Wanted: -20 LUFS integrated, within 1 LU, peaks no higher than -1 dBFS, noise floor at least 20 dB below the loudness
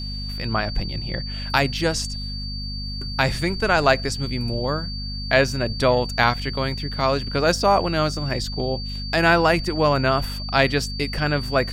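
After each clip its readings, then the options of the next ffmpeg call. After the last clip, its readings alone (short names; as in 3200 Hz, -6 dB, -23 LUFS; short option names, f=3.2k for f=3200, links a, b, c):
hum 50 Hz; harmonics up to 250 Hz; hum level -28 dBFS; steady tone 4600 Hz; tone level -32 dBFS; loudness -22.0 LUFS; peak -1.5 dBFS; loudness target -20.0 LUFS
-> -af "bandreject=f=50:t=h:w=6,bandreject=f=100:t=h:w=6,bandreject=f=150:t=h:w=6,bandreject=f=200:t=h:w=6,bandreject=f=250:t=h:w=6"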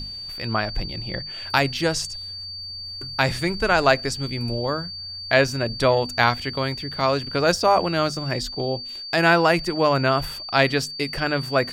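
hum none; steady tone 4600 Hz; tone level -32 dBFS
-> -af "bandreject=f=4.6k:w=30"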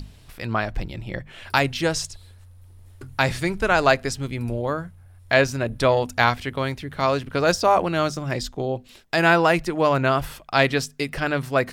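steady tone none; loudness -22.5 LUFS; peak -2.0 dBFS; loudness target -20.0 LUFS
-> -af "volume=2.5dB,alimiter=limit=-1dB:level=0:latency=1"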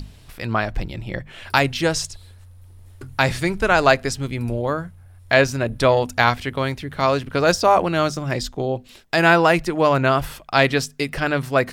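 loudness -20.0 LUFS; peak -1.0 dBFS; noise floor -46 dBFS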